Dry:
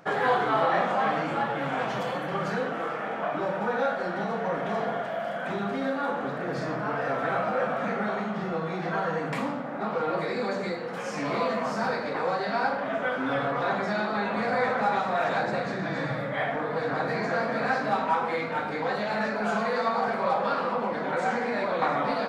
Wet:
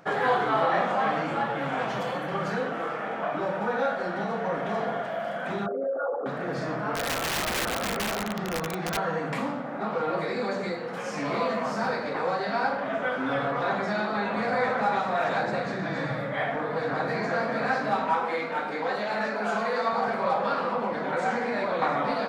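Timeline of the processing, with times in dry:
5.66–6.26 formant sharpening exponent 3
6.95–8.97 wrapped overs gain 22.5 dB
18.2–19.93 HPF 220 Hz

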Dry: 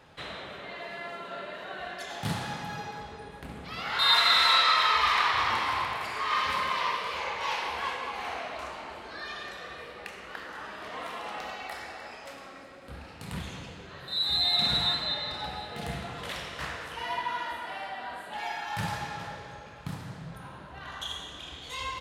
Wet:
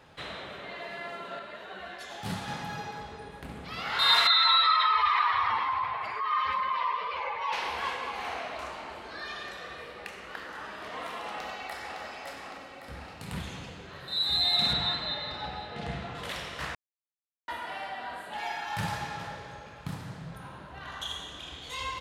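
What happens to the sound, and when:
1.39–2.48 ensemble effect
4.27–7.53 spectral contrast raised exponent 1.7
11.28–12.01 echo throw 0.56 s, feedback 55%, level -5.5 dB
14.73–16.15 air absorption 98 m
16.75–17.48 mute

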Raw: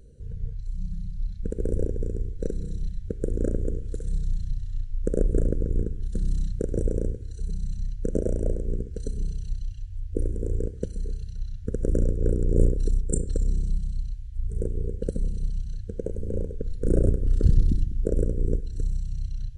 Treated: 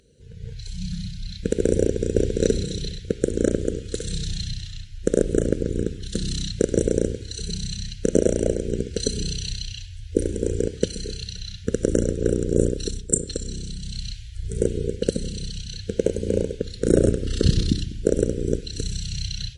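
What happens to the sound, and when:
1.82–2.28 echo throw 0.34 s, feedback 25%, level -0.5 dB
whole clip: weighting filter D; AGC gain up to 14.5 dB; dynamic EQ 3700 Hz, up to +5 dB, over -46 dBFS, Q 0.81; gain -1.5 dB

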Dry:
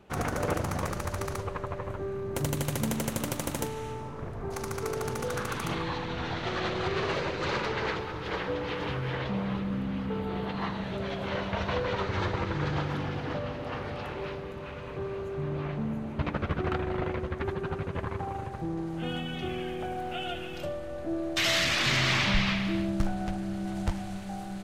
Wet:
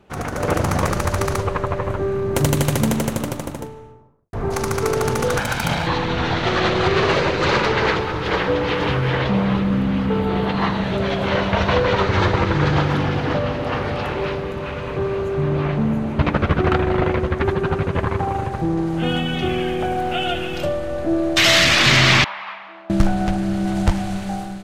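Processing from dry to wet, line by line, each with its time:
2.45–4.33 studio fade out
5.38–5.87 minimum comb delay 1.3 ms
22.24–22.9 ladder band-pass 1100 Hz, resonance 45%
whole clip: high shelf 11000 Hz -3.5 dB; AGC gain up to 9.5 dB; gain +3 dB

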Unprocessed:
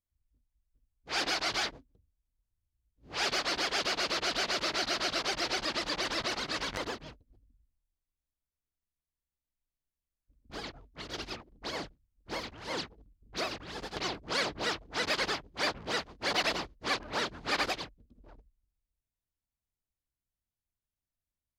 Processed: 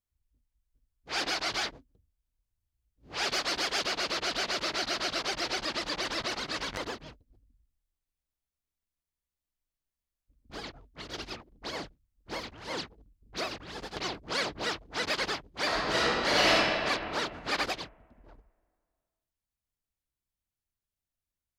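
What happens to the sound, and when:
3.3–3.85 high shelf 6100 Hz +4.5 dB
15.66–16.5 reverb throw, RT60 2.4 s, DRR -7.5 dB

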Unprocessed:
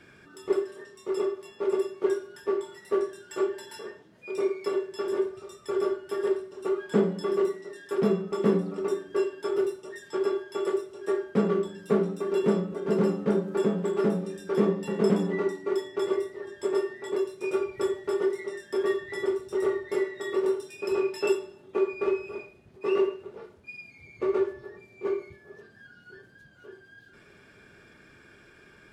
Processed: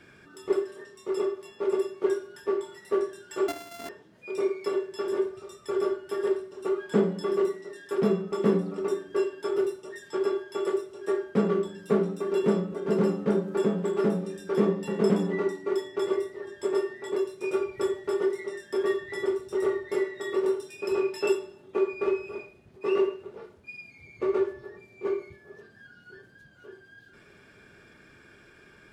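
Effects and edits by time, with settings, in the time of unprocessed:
3.48–3.89 sample sorter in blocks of 64 samples

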